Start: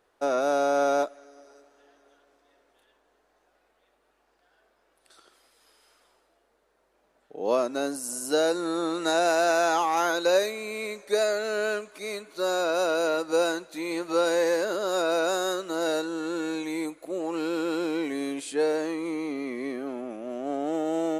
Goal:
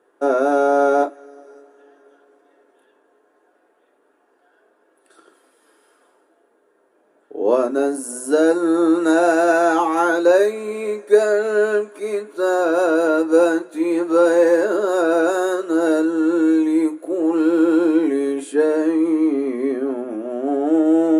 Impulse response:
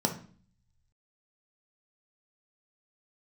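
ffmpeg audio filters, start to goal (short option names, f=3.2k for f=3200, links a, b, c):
-filter_complex "[1:a]atrim=start_sample=2205,afade=t=out:st=0.13:d=0.01,atrim=end_sample=6174,asetrate=79380,aresample=44100[a];[0:a][a]afir=irnorm=-1:irlink=0,volume=-1dB"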